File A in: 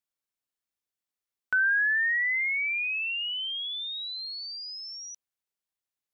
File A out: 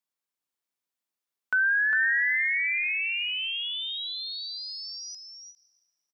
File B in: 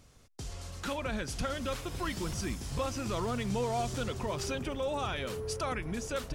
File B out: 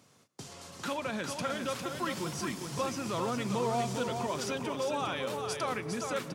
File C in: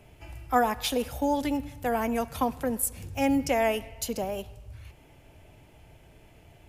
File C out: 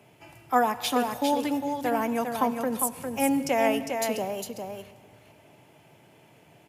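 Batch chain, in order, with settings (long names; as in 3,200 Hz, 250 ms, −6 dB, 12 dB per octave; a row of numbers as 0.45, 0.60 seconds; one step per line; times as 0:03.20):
high-pass filter 130 Hz 24 dB per octave
parametric band 1,000 Hz +3 dB 0.54 octaves
single-tap delay 404 ms −5.5 dB
dense smooth reverb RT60 2.1 s, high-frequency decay 0.6×, pre-delay 90 ms, DRR 17 dB
every ending faded ahead of time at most 270 dB per second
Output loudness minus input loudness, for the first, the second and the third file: +1.5, +1.0, +1.5 LU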